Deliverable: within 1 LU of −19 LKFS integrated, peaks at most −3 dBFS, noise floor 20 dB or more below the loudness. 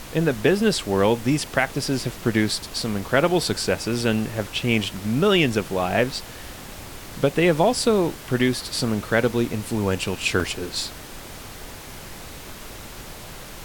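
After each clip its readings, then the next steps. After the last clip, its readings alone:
number of dropouts 5; longest dropout 2.4 ms; background noise floor −39 dBFS; target noise floor −43 dBFS; integrated loudness −22.5 LKFS; sample peak −5.5 dBFS; target loudness −19.0 LKFS
→ repair the gap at 0:00.79/0:01.66/0:02.82/0:06.19/0:10.40, 2.4 ms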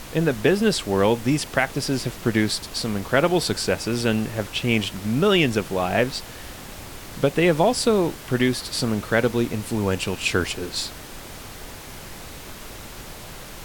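number of dropouts 0; background noise floor −39 dBFS; target noise floor −43 dBFS
→ noise reduction from a noise print 6 dB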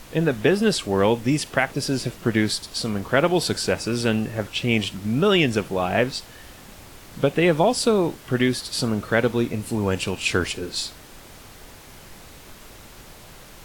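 background noise floor −45 dBFS; integrated loudness −22.5 LKFS; sample peak −5.5 dBFS; target loudness −19.0 LKFS
→ level +3.5 dB
brickwall limiter −3 dBFS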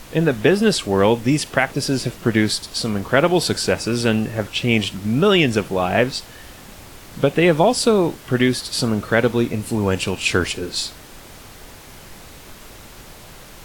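integrated loudness −19.0 LKFS; sample peak −3.0 dBFS; background noise floor −41 dBFS

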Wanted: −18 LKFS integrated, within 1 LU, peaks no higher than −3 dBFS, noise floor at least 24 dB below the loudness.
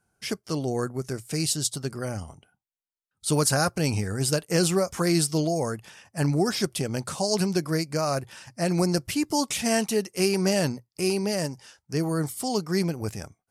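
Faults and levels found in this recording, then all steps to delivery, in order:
integrated loudness −26.5 LKFS; sample peak −9.0 dBFS; target loudness −18.0 LKFS
→ level +8.5 dB
brickwall limiter −3 dBFS

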